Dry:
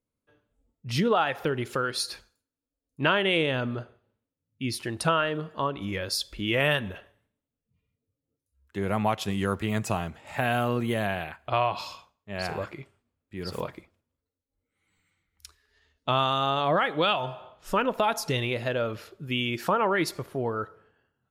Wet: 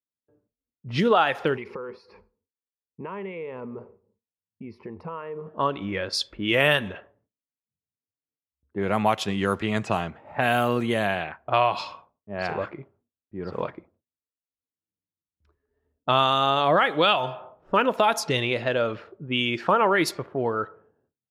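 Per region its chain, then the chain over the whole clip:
1.56–5.47 ripple EQ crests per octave 0.85, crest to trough 13 dB + compressor 4:1, threshold -36 dBFS
whole clip: gate with hold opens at -60 dBFS; HPF 180 Hz 6 dB/oct; low-pass opened by the level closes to 440 Hz, open at -23 dBFS; gain +4.5 dB

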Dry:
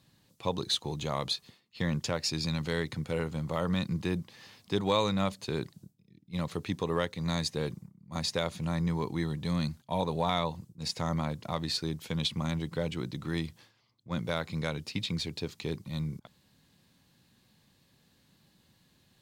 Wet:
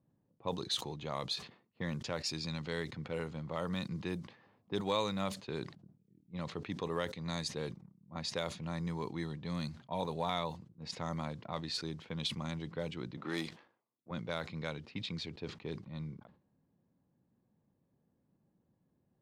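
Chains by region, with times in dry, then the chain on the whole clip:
13.17–14.11 HPF 270 Hz + sample leveller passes 2
whole clip: low shelf 100 Hz -9.5 dB; low-pass opened by the level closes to 620 Hz, open at -27 dBFS; sustainer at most 130 dB/s; gain -5.5 dB

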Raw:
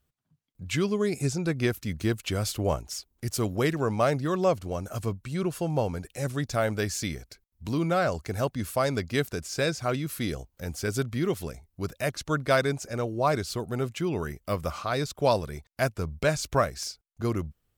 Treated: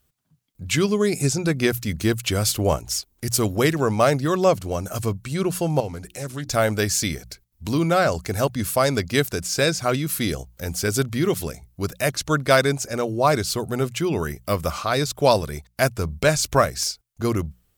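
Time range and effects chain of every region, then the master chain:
5.8–6.49 notches 60/120/180/240/300/360 Hz + compressor 1.5:1, threshold -44 dBFS + Doppler distortion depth 0.14 ms
whole clip: high shelf 4500 Hz +6.5 dB; notches 60/120/180 Hz; gain +6 dB

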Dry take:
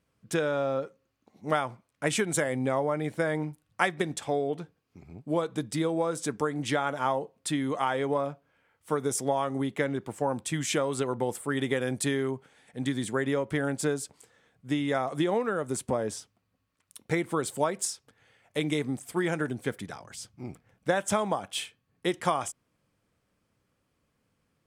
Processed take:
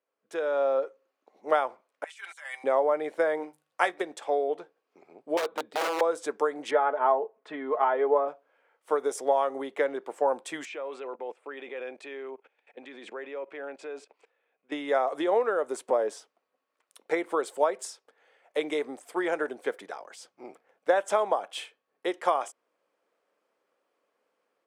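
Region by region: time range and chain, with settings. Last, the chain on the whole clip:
2.04–2.64 Bessel high-pass 1800 Hz, order 4 + negative-ratio compressor -45 dBFS + comb 5.1 ms, depth 59%
3.37–4.01 high shelf 4100 Hz +7.5 dB + notches 50/100/150/200 Hz + doubler 17 ms -13 dB
5.37–6.01 de-esser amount 95% + band shelf 7600 Hz -10 dB 1.3 oct + wrapped overs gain 24.5 dB
6.71–8.28 LPF 1800 Hz + comb 4.7 ms, depth 64%
10.65–14.72 bell 2500 Hz +12.5 dB 0.25 oct + level quantiser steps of 19 dB + BPF 170–4400 Hz
whole clip: HPF 460 Hz 24 dB/oct; tilt -3.5 dB/oct; AGC gain up to 10 dB; gain -7 dB

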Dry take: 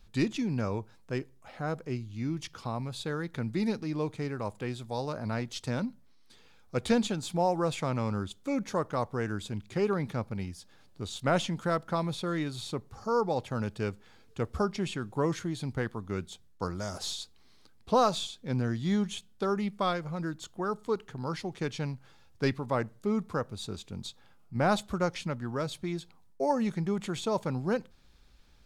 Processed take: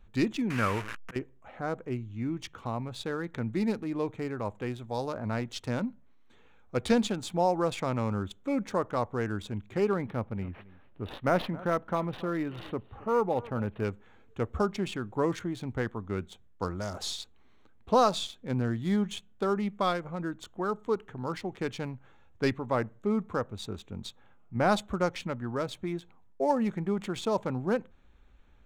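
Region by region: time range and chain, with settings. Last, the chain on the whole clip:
0.5–1.16 delta modulation 64 kbps, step -36.5 dBFS + band shelf 1800 Hz +11 dB + auto swell 0.266 s
10.06–13.85 echo 0.271 s -20 dB + decimation joined by straight lines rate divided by 6×
whole clip: Wiener smoothing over 9 samples; bell 150 Hz -8 dB 0.28 oct; gain +1.5 dB

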